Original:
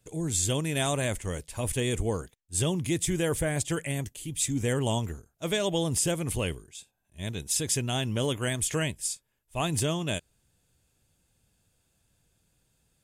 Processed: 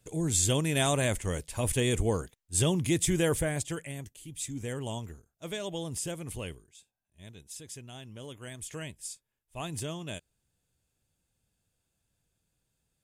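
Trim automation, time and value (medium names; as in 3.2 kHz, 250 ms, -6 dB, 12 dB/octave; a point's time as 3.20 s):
3.28 s +1 dB
3.92 s -8.5 dB
6.48 s -8.5 dB
7.56 s -16.5 dB
8.17 s -16.5 dB
9.12 s -8.5 dB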